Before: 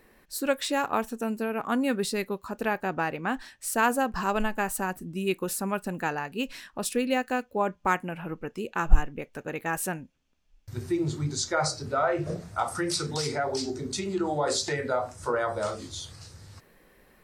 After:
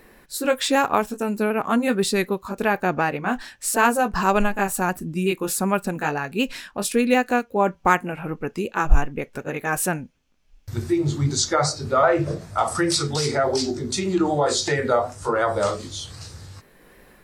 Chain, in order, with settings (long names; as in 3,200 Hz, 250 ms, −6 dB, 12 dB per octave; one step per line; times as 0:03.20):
pitch shifter swept by a sawtooth −1 semitone, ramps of 376 ms
level +8 dB